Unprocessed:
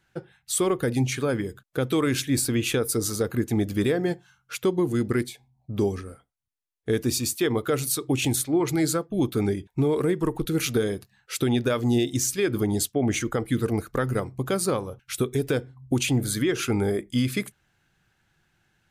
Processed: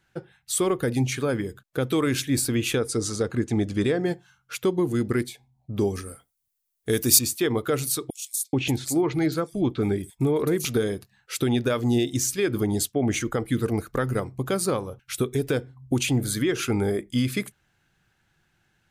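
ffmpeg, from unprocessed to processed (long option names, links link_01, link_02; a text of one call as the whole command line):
ffmpeg -i in.wav -filter_complex "[0:a]asettb=1/sr,asplit=3[link_01][link_02][link_03];[link_01]atrim=end=2.784[link_04];[link_02]atrim=start=2.78:end=4.05,asetpts=PTS-STARTPTS,afade=type=in:duration=0.004:curve=qsin,afade=type=out:start_time=1.266:duration=0.004:curve=qsin,lowpass=frequency=8800:width=0.5412,lowpass=frequency=8800:width=1.3066[link_05];[link_03]atrim=start=4.046[link_06];[link_04][link_05]acrossfade=duration=0.004:curve1=hsin:curve2=qsin[link_07];[link_07][link_06]acrossfade=duration=0.004:curve1=qsin:curve2=hsin,asettb=1/sr,asplit=3[link_08][link_09][link_10];[link_08]atrim=end=5.954[link_11];[link_09]atrim=start=5.95:end=7.19,asetpts=PTS-STARTPTS,afade=type=in:duration=0.004:curve=qsin,afade=type=out:start_time=1.236:duration=0.004:curve=qsin,aemphasis=mode=production:type=75kf[link_12];[link_10]atrim=start=7.186[link_13];[link_11][link_12]acrossfade=duration=0.004:curve1=hsin:curve2=qsin[link_14];[link_14][link_13]acrossfade=duration=0.004:curve1=qsin:curve2=hsin,asettb=1/sr,asplit=3[link_15][link_16][link_17];[link_15]atrim=end=8.104[link_18];[link_16]atrim=start=8.1:end=10.65,asetpts=PTS-STARTPTS,afade=type=in:duration=0.004:curve=qsin,afade=type=out:start_time=2.546:duration=0.004:curve=qsin,acrossover=split=4700[link_19][link_20];[link_19]adelay=430[link_21];[link_21][link_20]amix=inputs=2:normalize=0,atrim=end_sample=112455[link_22];[link_17]atrim=start=10.646[link_23];[link_18][link_22]acrossfade=duration=0.004:curve1=hsin:curve2=qsin[link_24];[link_24][link_23]acrossfade=duration=0.004:curve1=qsin:curve2=hsin" out.wav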